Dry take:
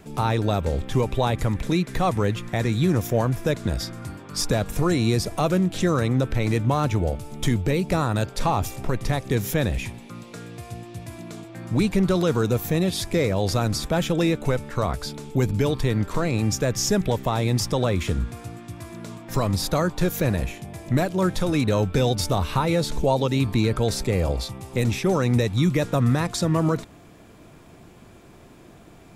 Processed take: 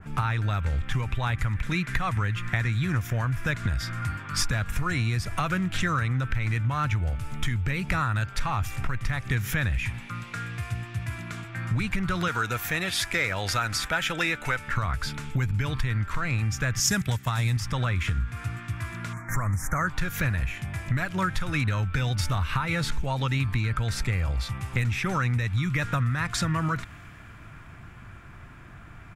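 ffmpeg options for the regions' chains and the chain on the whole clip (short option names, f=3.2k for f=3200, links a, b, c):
-filter_complex "[0:a]asettb=1/sr,asplit=3[a][b][c];[a]atrim=end=12.284[d];[b]atrim=start=12.28:end=14.68,asetpts=PTS-STARTPTS,afade=t=in:d=0.004:c=qsin,afade=t=out:st=2.396:d=0.004:c=qsin,bass=f=250:g=-14,treble=f=4k:g=1,bandreject=f=1.1k:w=11[e];[c]atrim=start=14.676[f];[d][e]acrossfade=d=0.004:c1=hsin:c2=qsin[g];[g][f]acrossfade=d=0.004:c1=qsin:c2=hsin,asettb=1/sr,asplit=3[h][i][j];[h]atrim=end=16.804[k];[i]atrim=start=16.8:end=17.57,asetpts=PTS-STARTPTS,afade=t=in:d=0.004:c=qsin,afade=t=out:st=0.766:d=0.004:c=qsin,agate=range=-8dB:threshold=-24dB:ratio=16:release=100:detection=peak,highpass=81,bass=f=250:g=4,treble=f=4k:g=13[l];[j]atrim=start=17.566[m];[k][l]acrossfade=d=0.004:c1=hsin:c2=qsin[n];[n][m]acrossfade=d=0.004:c1=qsin:c2=hsin,asettb=1/sr,asplit=3[o][p][q];[o]atrim=end=19.134[r];[p]atrim=start=19.13:end=19.87,asetpts=PTS-STARTPTS,afade=t=in:d=0.004:c=qsin,afade=t=out:st=0.736:d=0.004:c=qsin,asuperstop=centerf=3600:order=12:qfactor=0.98,equalizer=f=8.4k:t=o:w=2.3:g=3[s];[q]atrim=start=19.866[t];[r][s]acrossfade=d=0.004:c1=hsin:c2=qsin[u];[u][t]acrossfade=d=0.004:c1=qsin:c2=hsin,firequalizer=gain_entry='entry(110,0);entry(180,-9);entry(420,-18);entry(1400,3);entry(3900,-14);entry(14000,-17)':delay=0.05:min_phase=1,acompressor=threshold=-31dB:ratio=6,adynamicequalizer=threshold=0.00158:dfrequency=1900:dqfactor=0.7:tfrequency=1900:tqfactor=0.7:attack=5:release=100:ratio=0.375:range=3.5:mode=boostabove:tftype=highshelf,volume=7.5dB"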